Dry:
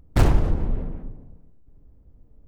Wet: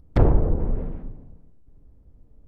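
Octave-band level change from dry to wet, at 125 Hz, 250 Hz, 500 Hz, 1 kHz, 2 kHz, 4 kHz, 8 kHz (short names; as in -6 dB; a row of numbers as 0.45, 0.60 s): 0.0 dB, +1.0 dB, +3.5 dB, -1.5 dB, -7.0 dB, under -10 dB, n/a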